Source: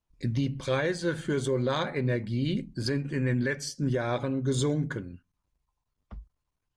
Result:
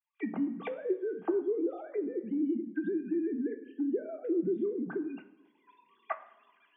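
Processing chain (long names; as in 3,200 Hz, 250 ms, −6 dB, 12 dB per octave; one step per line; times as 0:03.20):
three sine waves on the formant tracks
camcorder AGC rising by 32 dB per second
high-pass filter 230 Hz 12 dB per octave
treble cut that deepens with the level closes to 390 Hz, closed at −27 dBFS
convolution reverb RT60 1.0 s, pre-delay 3 ms, DRR 6 dB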